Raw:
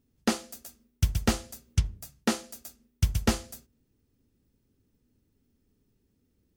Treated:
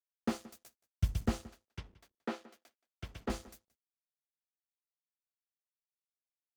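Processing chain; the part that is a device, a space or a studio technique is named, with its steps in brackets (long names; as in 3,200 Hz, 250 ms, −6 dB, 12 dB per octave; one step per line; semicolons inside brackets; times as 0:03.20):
early transistor amplifier (dead-zone distortion −47 dBFS; slew-rate limiting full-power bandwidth 51 Hz)
0:01.48–0:03.30: three-way crossover with the lows and the highs turned down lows −17 dB, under 260 Hz, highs −14 dB, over 4,200 Hz
slap from a distant wall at 30 metres, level −20 dB
level −5.5 dB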